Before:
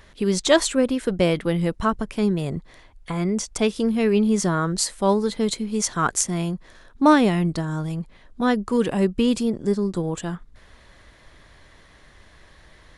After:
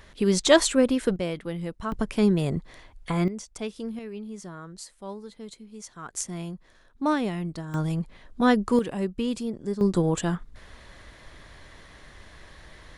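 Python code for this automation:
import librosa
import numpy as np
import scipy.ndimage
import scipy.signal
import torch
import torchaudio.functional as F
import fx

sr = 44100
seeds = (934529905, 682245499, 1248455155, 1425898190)

y = fx.gain(x, sr, db=fx.steps((0.0, -0.5), (1.16, -10.0), (1.92, 0.5), (3.28, -12.0), (3.99, -18.5), (6.14, -9.5), (7.74, 0.5), (8.79, -8.0), (9.81, 2.5)))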